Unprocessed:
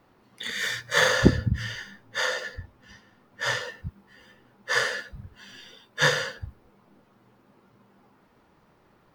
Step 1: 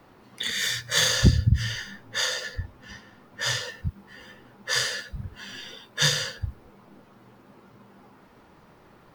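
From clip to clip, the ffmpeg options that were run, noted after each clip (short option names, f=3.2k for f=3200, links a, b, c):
-filter_complex "[0:a]acrossover=split=150|3000[a][b][c];[b]acompressor=threshold=-44dB:ratio=2.5[d];[a][d][c]amix=inputs=3:normalize=0,volume=7dB"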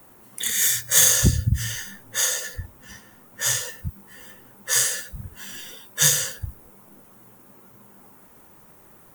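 -af "aexciter=amount=10.2:drive=2.6:freq=6.6k,volume=-1dB"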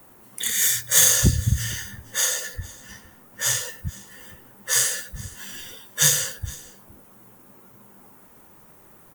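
-af "aecho=1:1:463:0.0841"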